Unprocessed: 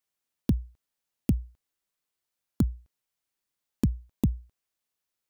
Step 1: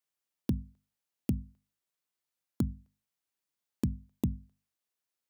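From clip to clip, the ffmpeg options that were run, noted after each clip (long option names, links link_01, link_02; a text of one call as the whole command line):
ffmpeg -i in.wav -af "highpass=66,bandreject=frequency=50:width_type=h:width=6,bandreject=frequency=100:width_type=h:width=6,bandreject=frequency=150:width_type=h:width=6,bandreject=frequency=200:width_type=h:width=6,bandreject=frequency=250:width_type=h:width=6,volume=-4dB" out.wav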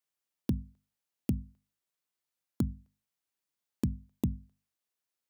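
ffmpeg -i in.wav -af anull out.wav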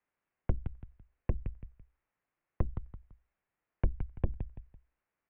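ffmpeg -i in.wav -filter_complex "[0:a]asplit=2[link_01][link_02];[link_02]aecho=0:1:168|336|504:0.282|0.0817|0.0237[link_03];[link_01][link_03]amix=inputs=2:normalize=0,asoftclip=type=tanh:threshold=-24.5dB,highpass=frequency=170:width_type=q:width=0.5412,highpass=frequency=170:width_type=q:width=1.307,lowpass=frequency=2500:width_type=q:width=0.5176,lowpass=frequency=2500:width_type=q:width=0.7071,lowpass=frequency=2500:width_type=q:width=1.932,afreqshift=-190,volume=8.5dB" out.wav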